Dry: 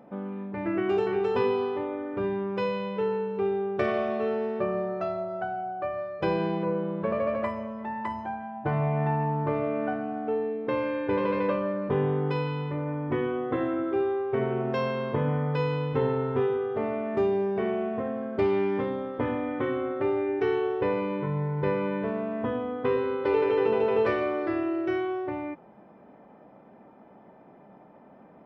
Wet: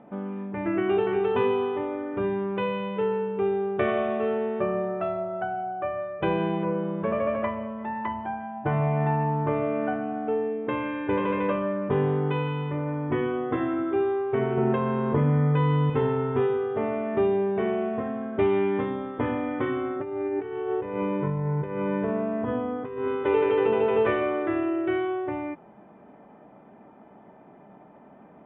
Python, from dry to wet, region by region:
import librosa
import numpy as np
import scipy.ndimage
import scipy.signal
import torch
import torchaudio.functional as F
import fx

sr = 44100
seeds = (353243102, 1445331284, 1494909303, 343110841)

y = fx.chain(x, sr, fx.high_shelf(hz=2900.0, db=-11.0),
    fx.doubler(ms=13.0, db=-4.5),
    fx.env_flatten(amount_pct=70), at=(14.57, 15.9))
y = fx.chain(y, sr, fx.high_shelf(hz=2600.0, db=-10.0),
    fx.over_compress(threshold_db=-29.0, ratio=-0.5), at=(19.96, 23.08))
y = scipy.signal.sosfilt(scipy.signal.butter(16, 3600.0, 'lowpass', fs=sr, output='sos'), y)
y = fx.notch(y, sr, hz=520.0, q=12.0)
y = F.gain(torch.from_numpy(y), 2.0).numpy()